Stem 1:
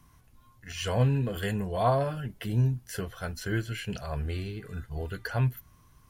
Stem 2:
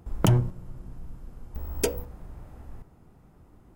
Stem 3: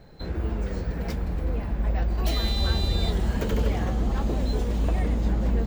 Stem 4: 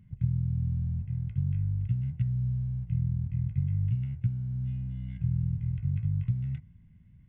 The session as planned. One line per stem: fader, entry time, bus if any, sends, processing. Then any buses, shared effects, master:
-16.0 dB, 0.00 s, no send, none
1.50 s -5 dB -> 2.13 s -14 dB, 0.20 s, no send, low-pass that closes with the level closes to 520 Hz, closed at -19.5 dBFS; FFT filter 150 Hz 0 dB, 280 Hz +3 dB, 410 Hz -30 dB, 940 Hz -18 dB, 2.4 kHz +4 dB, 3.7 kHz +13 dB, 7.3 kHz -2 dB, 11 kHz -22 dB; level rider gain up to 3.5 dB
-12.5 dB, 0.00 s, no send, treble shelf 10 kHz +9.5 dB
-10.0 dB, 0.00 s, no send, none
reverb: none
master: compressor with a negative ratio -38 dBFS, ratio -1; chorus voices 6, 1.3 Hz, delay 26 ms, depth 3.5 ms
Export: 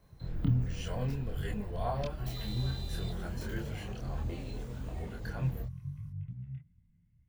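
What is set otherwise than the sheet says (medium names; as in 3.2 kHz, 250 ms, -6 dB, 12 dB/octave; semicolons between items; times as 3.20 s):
stem 1 -16.0 dB -> -7.5 dB; master: missing compressor with a negative ratio -38 dBFS, ratio -1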